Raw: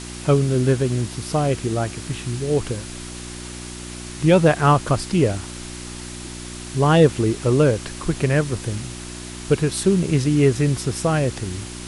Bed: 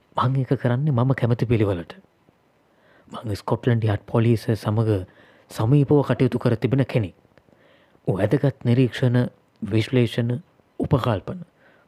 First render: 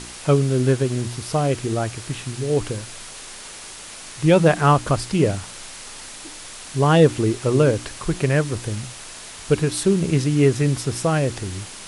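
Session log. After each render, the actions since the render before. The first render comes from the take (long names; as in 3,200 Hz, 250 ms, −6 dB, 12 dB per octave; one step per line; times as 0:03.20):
hum removal 60 Hz, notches 6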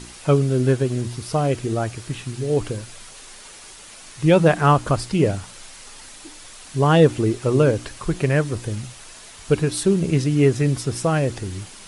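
broadband denoise 6 dB, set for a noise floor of −38 dBFS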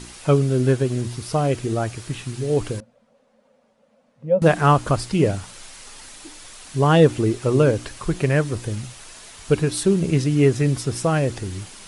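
0:02.80–0:04.42: pair of resonant band-passes 350 Hz, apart 1.2 octaves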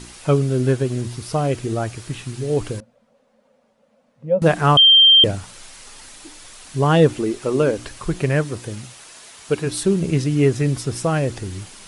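0:04.77–0:05.24: beep over 3,160 Hz −7 dBFS
0:07.13–0:07.79: parametric band 110 Hz −14 dB 0.65 octaves
0:08.43–0:09.65: high-pass filter 130 Hz → 290 Hz 6 dB per octave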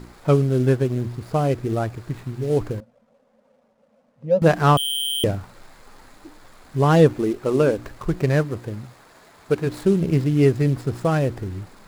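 running median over 15 samples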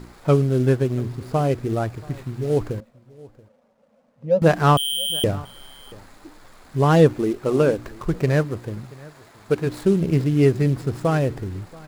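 single-tap delay 681 ms −22.5 dB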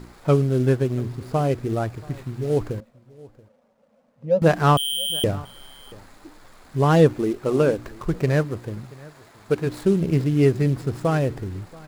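level −1 dB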